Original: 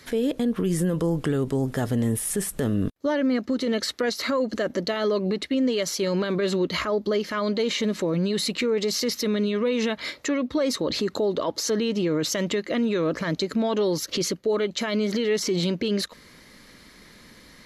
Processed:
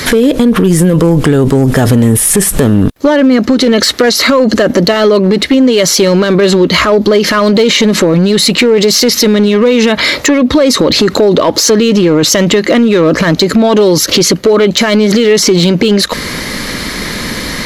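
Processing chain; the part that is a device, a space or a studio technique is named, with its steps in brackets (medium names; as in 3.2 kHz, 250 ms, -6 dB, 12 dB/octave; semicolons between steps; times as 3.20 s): loud club master (compression 2.5:1, threshold -27 dBFS, peak gain reduction 5.5 dB; hard clipper -23 dBFS, distortion -22 dB; loudness maximiser +32.5 dB); trim -1 dB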